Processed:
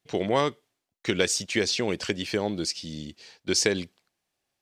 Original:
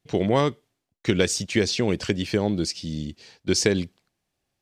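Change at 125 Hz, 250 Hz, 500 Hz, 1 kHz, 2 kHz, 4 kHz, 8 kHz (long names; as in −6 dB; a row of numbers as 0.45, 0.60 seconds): −8.5, −5.5, −3.0, −1.0, 0.0, 0.0, 0.0 decibels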